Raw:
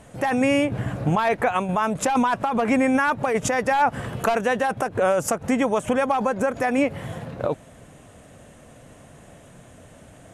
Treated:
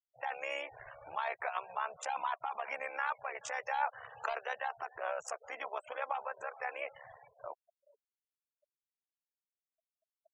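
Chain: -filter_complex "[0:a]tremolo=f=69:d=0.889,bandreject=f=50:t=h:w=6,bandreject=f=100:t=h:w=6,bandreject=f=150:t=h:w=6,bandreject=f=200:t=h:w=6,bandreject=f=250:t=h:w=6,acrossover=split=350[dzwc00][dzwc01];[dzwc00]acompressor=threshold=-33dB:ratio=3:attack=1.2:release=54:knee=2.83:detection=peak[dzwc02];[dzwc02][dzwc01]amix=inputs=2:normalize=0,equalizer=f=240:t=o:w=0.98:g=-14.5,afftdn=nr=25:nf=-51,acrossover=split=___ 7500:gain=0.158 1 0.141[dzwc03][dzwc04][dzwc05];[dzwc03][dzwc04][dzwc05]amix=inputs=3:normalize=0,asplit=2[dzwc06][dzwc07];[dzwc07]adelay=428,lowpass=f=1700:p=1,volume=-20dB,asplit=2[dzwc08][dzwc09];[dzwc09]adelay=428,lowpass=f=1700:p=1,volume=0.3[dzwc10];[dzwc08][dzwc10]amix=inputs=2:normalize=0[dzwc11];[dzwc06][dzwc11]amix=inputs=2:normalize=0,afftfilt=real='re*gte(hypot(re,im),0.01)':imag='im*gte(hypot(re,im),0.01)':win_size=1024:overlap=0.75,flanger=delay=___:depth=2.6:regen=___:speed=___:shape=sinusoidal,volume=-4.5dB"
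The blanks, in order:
550, 0.9, -55, 0.41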